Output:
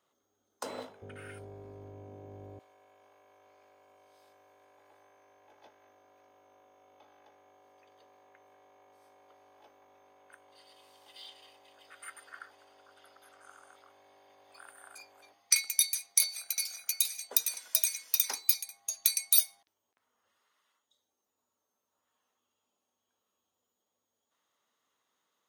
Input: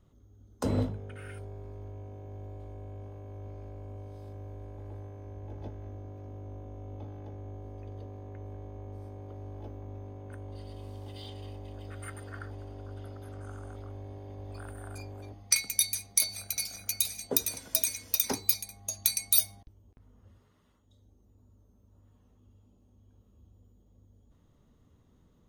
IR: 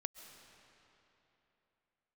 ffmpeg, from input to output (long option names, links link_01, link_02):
-af "asetnsamples=nb_out_samples=441:pad=0,asendcmd='1.02 highpass f 150;2.59 highpass f 1100',highpass=730"